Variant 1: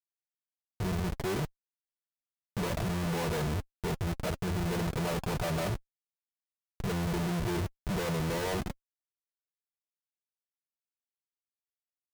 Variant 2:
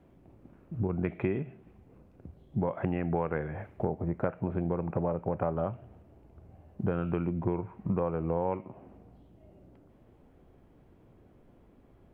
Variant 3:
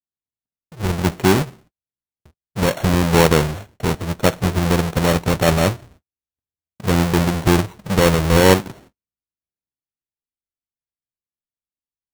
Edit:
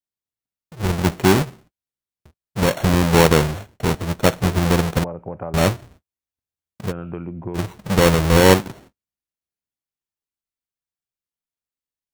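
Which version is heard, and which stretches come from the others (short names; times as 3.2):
3
5.04–5.54 from 2
6.88–7.59 from 2, crossfade 0.10 s
not used: 1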